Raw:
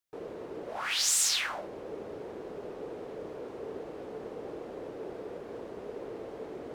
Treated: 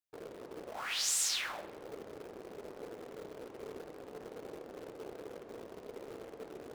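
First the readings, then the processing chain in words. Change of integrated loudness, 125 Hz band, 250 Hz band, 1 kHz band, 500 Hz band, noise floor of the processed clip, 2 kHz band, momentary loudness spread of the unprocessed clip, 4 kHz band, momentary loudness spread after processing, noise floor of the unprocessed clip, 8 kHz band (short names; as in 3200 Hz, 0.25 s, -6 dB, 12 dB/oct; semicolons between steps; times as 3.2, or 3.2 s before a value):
-5.5 dB, -6.0 dB, -6.5 dB, -5.5 dB, -6.5 dB, -53 dBFS, -5.5 dB, 17 LU, -5.5 dB, 17 LU, -44 dBFS, -5.5 dB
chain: in parallel at -8 dB: bit-crush 6-bit; on the sum: tape echo 69 ms, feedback 73%, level -14 dB, low-pass 3500 Hz; gain -8.5 dB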